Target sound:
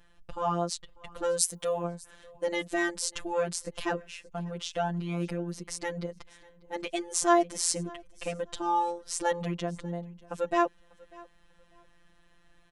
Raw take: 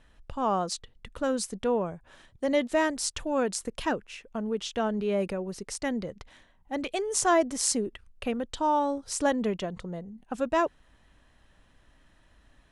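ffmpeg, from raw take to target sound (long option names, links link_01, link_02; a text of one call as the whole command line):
ffmpeg -i in.wav -filter_complex "[0:a]asplit=3[link_01][link_02][link_03];[link_01]afade=type=out:start_time=1.38:duration=0.02[link_04];[link_02]aemphasis=mode=production:type=bsi,afade=type=in:start_time=1.38:duration=0.02,afade=type=out:start_time=1.83:duration=0.02[link_05];[link_03]afade=type=in:start_time=1.83:duration=0.02[link_06];[link_04][link_05][link_06]amix=inputs=3:normalize=0,afftfilt=real='hypot(re,im)*cos(PI*b)':imag='0':win_size=1024:overlap=0.75,aecho=1:1:594|1188:0.0668|0.0154,volume=2dB" out.wav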